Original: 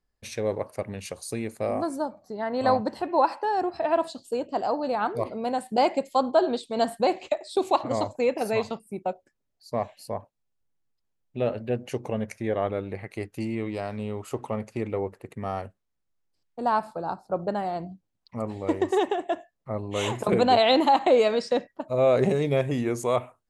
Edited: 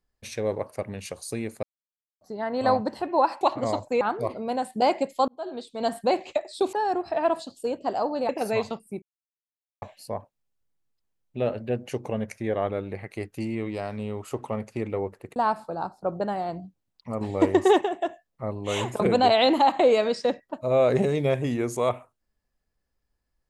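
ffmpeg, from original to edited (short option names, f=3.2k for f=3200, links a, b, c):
-filter_complex "[0:a]asplit=13[a][b][c][d][e][f][g][h][i][j][k][l][m];[a]atrim=end=1.63,asetpts=PTS-STARTPTS,afade=t=out:st=1.626:d=0.004:c=hsin[n];[b]atrim=start=1.63:end=2.21,asetpts=PTS-STARTPTS,volume=0[o];[c]atrim=start=2.21:end=3.412,asetpts=PTS-STARTPTS,afade=t=in:d=0.004:c=hsin[p];[d]atrim=start=7.688:end=8.292[q];[e]atrim=start=4.968:end=6.24,asetpts=PTS-STARTPTS,afade=t=out:st=1.268:d=0.004:c=hsin[r];[f]atrim=start=6.24:end=7.692,asetpts=PTS-STARTPTS,afade=t=in:d=0.74[s];[g]atrim=start=3.408:end=4.972[t];[h]atrim=start=8.288:end=9.02,asetpts=PTS-STARTPTS,afade=t=out:st=0.728:d=0.004:c=hsin[u];[i]atrim=start=9.02:end=9.82,asetpts=PTS-STARTPTS,volume=0[v];[j]atrim=start=9.82:end=15.362,asetpts=PTS-STARTPTS,afade=t=in:d=0.004:c=hsin[w];[k]atrim=start=16.628:end=18.482[x];[l]atrim=start=18.478:end=19.082,asetpts=PTS-STARTPTS,volume=5dB[y];[m]atrim=start=19.078[z];[n][o][p]concat=n=3:v=0:a=1[aa];[aa][q]acrossfade=d=0.004:c1=hsin:c2=hsin[ab];[r][s]concat=n=2:v=0:a=1[ac];[ab][ac]acrossfade=d=0.004:c1=hsin:c2=hsin[ad];[ad][t]acrossfade=d=0.004:c1=hsin:c2=hsin[ae];[u][v][w]concat=n=3:v=0:a=1[af];[ae][af]acrossfade=d=0.004:c1=hsin:c2=hsin[ag];[ag][x]acrossfade=d=0.004:c1=hsin:c2=hsin[ah];[ah][y]acrossfade=d=0.004:c1=hsin:c2=hsin[ai];[ai][z]acrossfade=d=0.004:c1=hsin:c2=hsin"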